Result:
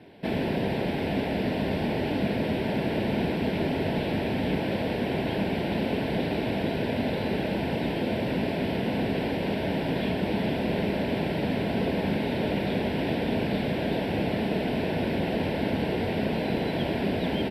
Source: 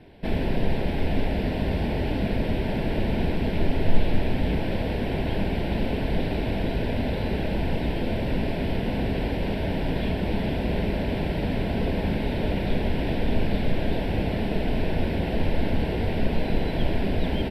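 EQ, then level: HPF 140 Hz 12 dB/oct; +1.0 dB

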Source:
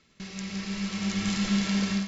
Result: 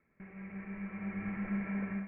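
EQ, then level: rippled Chebyshev low-pass 2400 Hz, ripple 3 dB; -7.0 dB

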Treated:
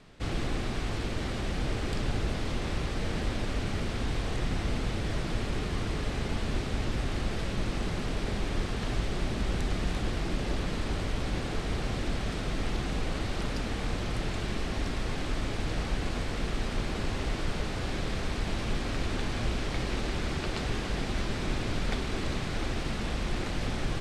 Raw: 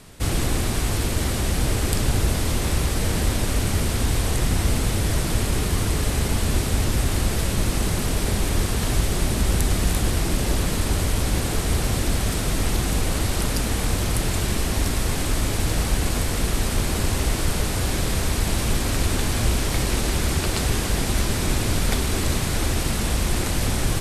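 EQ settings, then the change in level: LPF 4100 Hz 12 dB/oct; bell 76 Hz -6 dB 1 oct; notch 960 Hz, Q 28; -7.0 dB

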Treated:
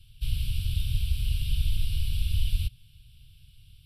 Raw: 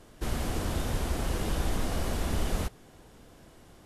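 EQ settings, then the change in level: elliptic band-stop 120–2700 Hz, stop band 60 dB; high shelf 4800 Hz -4.5 dB; fixed phaser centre 1900 Hz, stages 6; +6.0 dB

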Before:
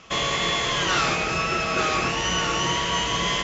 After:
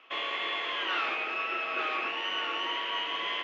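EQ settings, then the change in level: Chebyshev band-pass 290–2900 Hz, order 3; tilt +2.5 dB/oct; -8.5 dB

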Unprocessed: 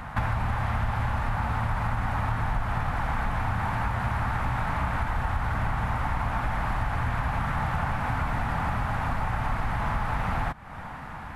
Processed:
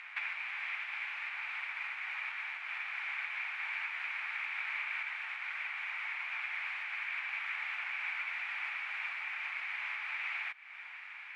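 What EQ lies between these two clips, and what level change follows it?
ladder band-pass 2500 Hz, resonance 75%; +7.0 dB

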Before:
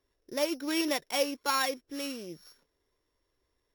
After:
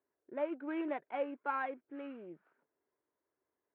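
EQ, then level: air absorption 450 m; speaker cabinet 160–2000 Hz, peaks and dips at 500 Hz -5 dB, 1100 Hz -6 dB, 1900 Hz -6 dB; low shelf 320 Hz -12 dB; +1.0 dB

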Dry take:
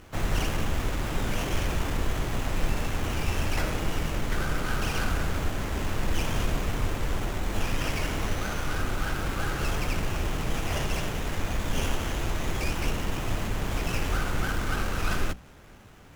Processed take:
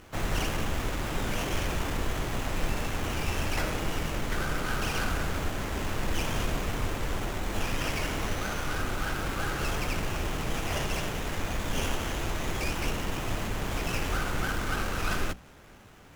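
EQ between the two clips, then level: low shelf 180 Hz -4 dB; 0.0 dB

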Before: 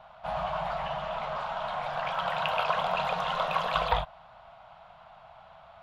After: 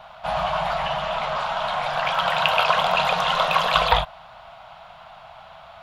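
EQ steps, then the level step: high shelf 2100 Hz +8.5 dB; +6.5 dB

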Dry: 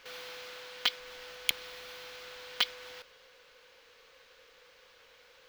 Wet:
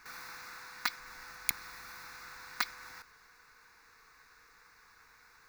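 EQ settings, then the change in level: fixed phaser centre 1300 Hz, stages 4; +3.5 dB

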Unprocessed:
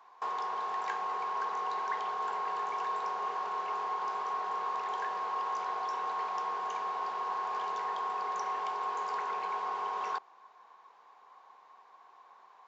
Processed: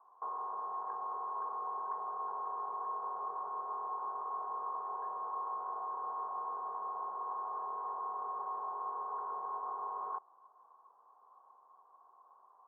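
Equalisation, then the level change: elliptic low-pass 1200 Hz, stop band 60 dB; low shelf 340 Hz -9.5 dB; -3.5 dB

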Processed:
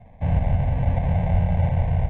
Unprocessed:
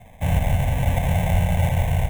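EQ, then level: tape spacing loss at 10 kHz 44 dB; 0.0 dB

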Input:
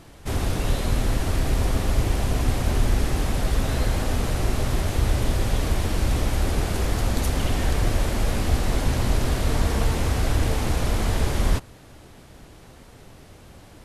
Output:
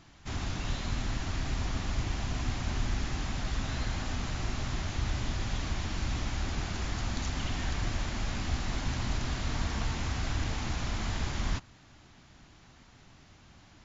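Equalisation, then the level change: brick-wall FIR low-pass 7400 Hz; low shelf 130 Hz -6 dB; bell 480 Hz -12.5 dB 0.92 oct; -5.5 dB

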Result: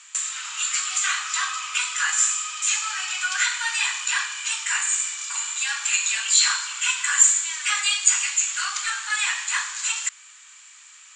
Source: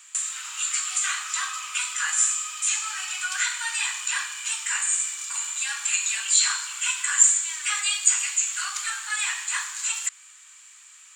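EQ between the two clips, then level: LPF 7300 Hz 24 dB/oct; +4.0 dB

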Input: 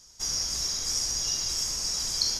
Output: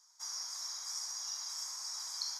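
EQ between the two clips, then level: ladder high-pass 840 Hz, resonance 50%; bell 2800 Hz -13 dB 0.36 oct; -2.0 dB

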